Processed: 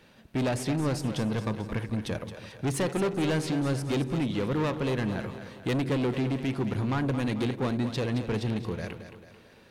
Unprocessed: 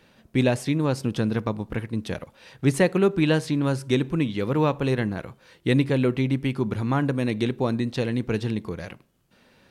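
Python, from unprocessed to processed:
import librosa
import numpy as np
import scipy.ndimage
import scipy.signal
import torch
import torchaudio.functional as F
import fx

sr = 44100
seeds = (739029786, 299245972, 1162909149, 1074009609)

y = fx.highpass(x, sr, hz=91.0, slope=12, at=(2.77, 3.5))
y = 10.0 ** (-24.0 / 20.0) * np.tanh(y / 10.0 ** (-24.0 / 20.0))
y = fx.echo_split(y, sr, split_hz=390.0, low_ms=162, high_ms=220, feedback_pct=52, wet_db=-10.0)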